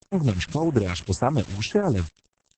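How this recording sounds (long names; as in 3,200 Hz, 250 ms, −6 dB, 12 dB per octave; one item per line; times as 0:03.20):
a quantiser's noise floor 6 bits, dither none
tremolo triangle 8.1 Hz, depth 55%
phaser sweep stages 2, 1.8 Hz, lowest notch 370–4,400 Hz
Opus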